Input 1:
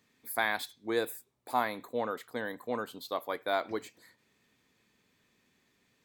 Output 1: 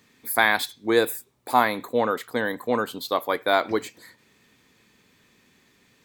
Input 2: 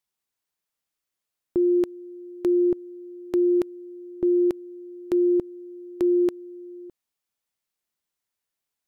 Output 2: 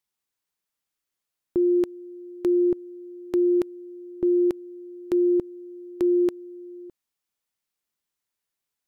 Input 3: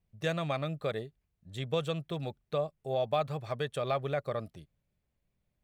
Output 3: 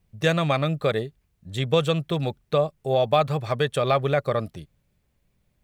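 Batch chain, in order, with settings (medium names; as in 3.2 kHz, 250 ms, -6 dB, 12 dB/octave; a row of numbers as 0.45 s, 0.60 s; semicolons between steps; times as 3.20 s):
peaking EQ 660 Hz -2.5 dB 0.36 oct; normalise loudness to -24 LUFS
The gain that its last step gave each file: +11.0 dB, 0.0 dB, +11.0 dB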